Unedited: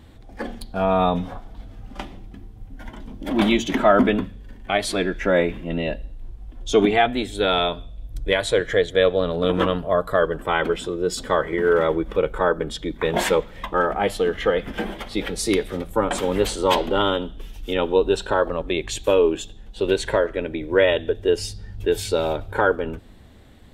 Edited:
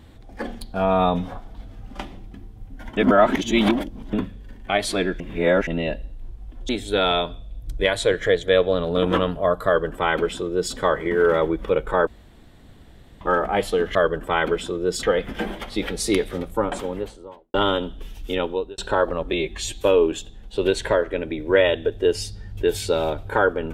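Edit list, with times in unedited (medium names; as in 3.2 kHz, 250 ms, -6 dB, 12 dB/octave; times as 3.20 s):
2.97–4.13 s: reverse
5.20–5.67 s: reverse
6.69–7.16 s: delete
10.13–11.21 s: copy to 14.42 s
12.54–13.68 s: room tone
15.68–16.93 s: studio fade out
17.70–18.17 s: fade out
18.72–19.04 s: stretch 1.5×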